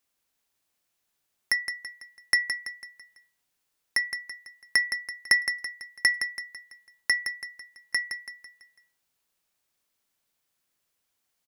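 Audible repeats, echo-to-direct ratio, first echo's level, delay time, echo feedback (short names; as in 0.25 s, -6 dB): 4, -7.0 dB, -8.0 dB, 0.166 s, 45%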